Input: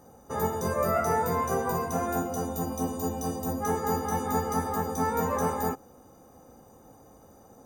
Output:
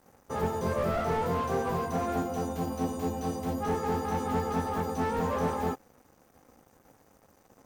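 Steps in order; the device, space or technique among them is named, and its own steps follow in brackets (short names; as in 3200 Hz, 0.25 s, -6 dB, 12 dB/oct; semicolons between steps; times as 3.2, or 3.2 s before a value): early transistor amplifier (crossover distortion -54.5 dBFS; slew limiter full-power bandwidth 34 Hz)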